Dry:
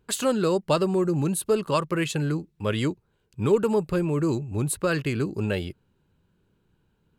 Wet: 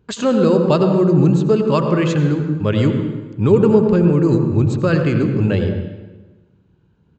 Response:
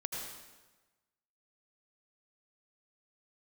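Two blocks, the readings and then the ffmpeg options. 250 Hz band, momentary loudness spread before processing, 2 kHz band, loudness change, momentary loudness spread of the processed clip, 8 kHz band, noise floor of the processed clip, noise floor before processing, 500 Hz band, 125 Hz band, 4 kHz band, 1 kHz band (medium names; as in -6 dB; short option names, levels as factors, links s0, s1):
+11.0 dB, 6 LU, +4.5 dB, +9.5 dB, 7 LU, no reading, -57 dBFS, -70 dBFS, +9.0 dB, +12.0 dB, +2.5 dB, +5.5 dB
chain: -filter_complex "[0:a]highpass=63,asplit=2[s0][s1];[s1]aemphasis=mode=reproduction:type=75kf[s2];[1:a]atrim=start_sample=2205,lowshelf=f=390:g=11[s3];[s2][s3]afir=irnorm=-1:irlink=0,volume=1[s4];[s0][s4]amix=inputs=2:normalize=0,aresample=16000,aresample=44100,asplit=2[s5][s6];[s6]adelay=90,highpass=300,lowpass=3400,asoftclip=type=hard:threshold=0.335,volume=0.0708[s7];[s5][s7]amix=inputs=2:normalize=0"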